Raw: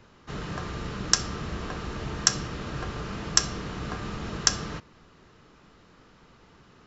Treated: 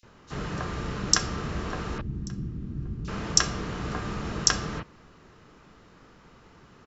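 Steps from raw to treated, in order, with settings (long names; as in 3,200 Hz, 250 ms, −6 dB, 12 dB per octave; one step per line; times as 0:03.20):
0:01.98–0:03.05: drawn EQ curve 230 Hz 0 dB, 350 Hz −7 dB, 540 Hz −25 dB
multiband delay without the direct sound highs, lows 30 ms, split 3,800 Hz
level +2 dB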